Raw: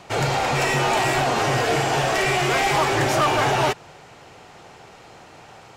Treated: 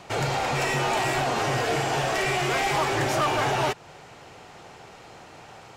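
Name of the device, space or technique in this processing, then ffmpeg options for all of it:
parallel compression: -filter_complex "[0:a]asplit=2[s0][s1];[s1]acompressor=threshold=0.0282:ratio=6,volume=0.794[s2];[s0][s2]amix=inputs=2:normalize=0,volume=0.501"

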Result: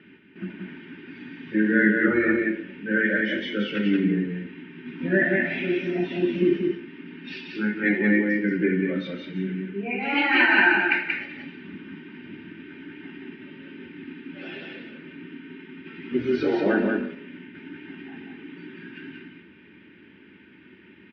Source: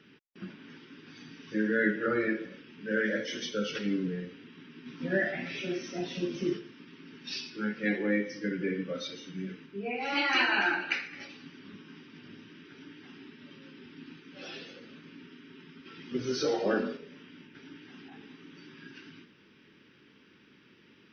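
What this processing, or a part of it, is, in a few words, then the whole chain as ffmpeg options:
bass cabinet: -af "highpass=61,equalizer=f=77:t=q:w=4:g=10,equalizer=f=180:t=q:w=4:g=10,equalizer=f=380:t=q:w=4:g=4,equalizer=f=550:t=q:w=4:g=-6,equalizer=f=1200:t=q:w=4:g=-9,lowpass=f=2300:w=0.5412,lowpass=f=2300:w=1.3066,equalizer=f=180:t=o:w=0.36:g=-2.5,highshelf=f=2000:g=10.5,aecho=1:1:3.3:0.4,aecho=1:1:182:0.668,volume=1.68"

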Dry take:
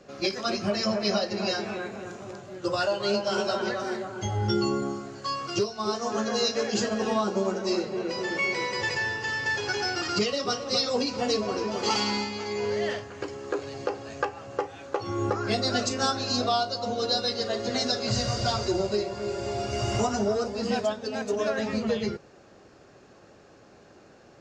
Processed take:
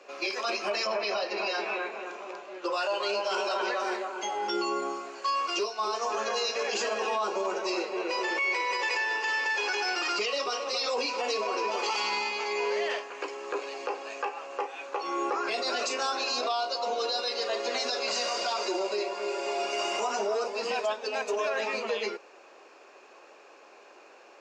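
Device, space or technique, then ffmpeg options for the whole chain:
laptop speaker: -filter_complex "[0:a]highpass=f=370:w=0.5412,highpass=f=370:w=1.3066,equalizer=f=1000:t=o:w=0.52:g=7.5,equalizer=f=2500:t=o:w=0.35:g=11,alimiter=limit=0.0891:level=0:latency=1:release=26,asettb=1/sr,asplit=3[s0][s1][s2];[s0]atrim=end=0.874[s3];[s1]atrim=start=0.87:end=2.73,asetpts=PTS-STARTPTS,afade=t=in:d=0.004:c=qsin,afade=t=out:st=1.856:d=0.004:c=qsin,lowpass=5200[s4];[s2]atrim=start=2.726[s5];[s3][s4]acrossfade=d=0.004:c1=hsin:c2=qsin[s6];[s6][s5]acrossfade=d=0.004:c1=qsin:c2=hsin"

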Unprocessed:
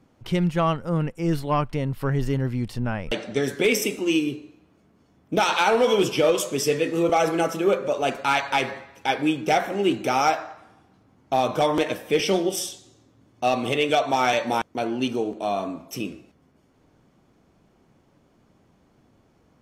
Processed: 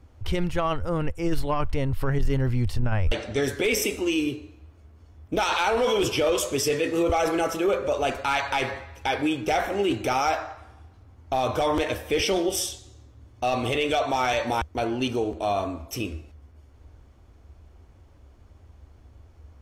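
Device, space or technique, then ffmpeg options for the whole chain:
car stereo with a boomy subwoofer: -af "lowshelf=f=110:t=q:w=3:g=13.5,alimiter=limit=0.141:level=0:latency=1:release=11,volume=1.19"

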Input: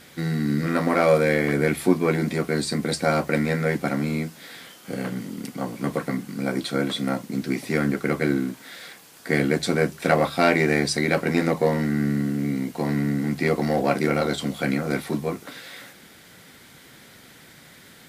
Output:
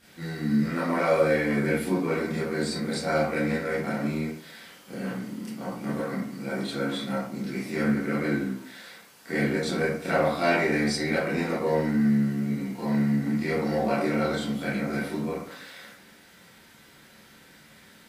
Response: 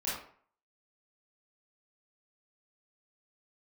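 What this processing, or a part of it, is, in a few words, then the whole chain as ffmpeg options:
bathroom: -filter_complex "[1:a]atrim=start_sample=2205[s0];[0:a][s0]afir=irnorm=-1:irlink=0,volume=0.376"

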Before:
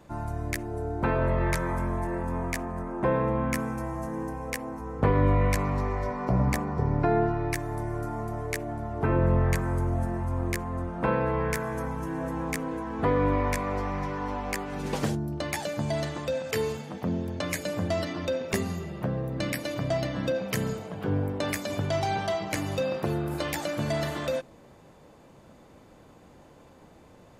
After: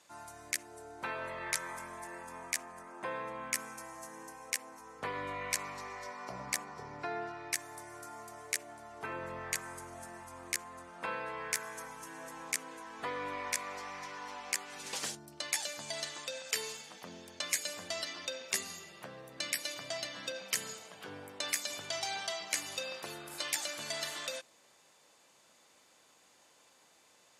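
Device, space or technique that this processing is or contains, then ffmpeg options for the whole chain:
piezo pickup straight into a mixer: -af "lowpass=8200,aderivative,volume=2.24"

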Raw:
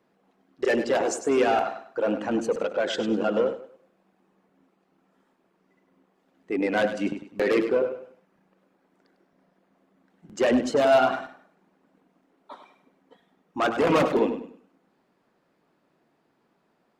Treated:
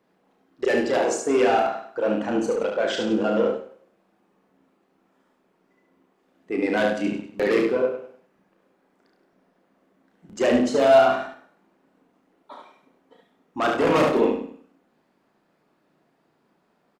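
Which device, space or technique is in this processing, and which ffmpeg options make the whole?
slapback doubling: -filter_complex "[0:a]asplit=3[s0][s1][s2];[s1]adelay=33,volume=0.531[s3];[s2]adelay=72,volume=0.596[s4];[s0][s3][s4]amix=inputs=3:normalize=0"

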